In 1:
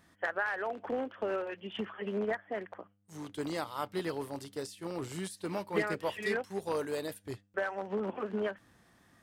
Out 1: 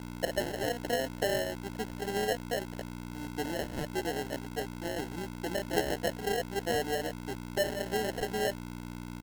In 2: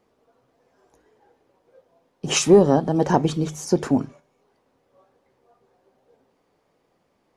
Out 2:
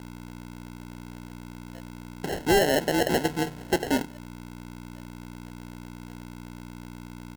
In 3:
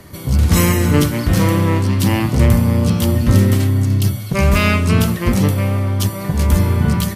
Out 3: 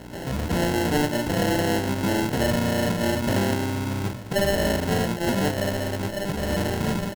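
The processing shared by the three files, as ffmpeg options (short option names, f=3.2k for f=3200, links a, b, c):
-filter_complex "[0:a]aeval=exprs='val(0)+0.0282*(sin(2*PI*60*n/s)+sin(2*PI*2*60*n/s)/2+sin(2*PI*3*60*n/s)/3+sin(2*PI*4*60*n/s)/4+sin(2*PI*5*60*n/s)/5)':c=same,anlmdn=0.398,asplit=2[a][b];[b]acompressor=threshold=-27dB:ratio=16,volume=-0.5dB[c];[a][c]amix=inputs=2:normalize=0,bandpass=f=570:t=q:w=1.1:csg=0,aresample=16000,acrusher=bits=3:mode=log:mix=0:aa=0.000001,aresample=44100,aemphasis=mode=reproduction:type=50fm,acrusher=samples=37:mix=1:aa=0.000001,volume=16dB,asoftclip=hard,volume=-16dB,volume=-1dB"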